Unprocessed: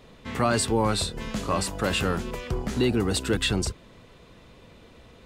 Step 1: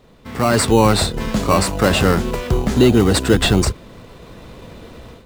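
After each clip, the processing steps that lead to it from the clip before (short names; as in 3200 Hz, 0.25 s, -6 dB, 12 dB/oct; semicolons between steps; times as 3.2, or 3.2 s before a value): AGC gain up to 12.5 dB; in parallel at -4 dB: sample-and-hold 13×; on the sum: gain -3 dB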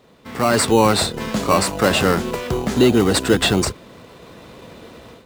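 HPF 190 Hz 6 dB/oct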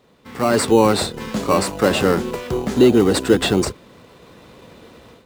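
notch 660 Hz, Q 22; dynamic EQ 370 Hz, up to +6 dB, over -25 dBFS, Q 0.71; gain -3.5 dB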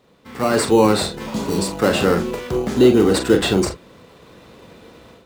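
spectral repair 1.29–1.66, 500–3100 Hz after; reverb, pre-delay 39 ms, DRR 6.5 dB; gain -1 dB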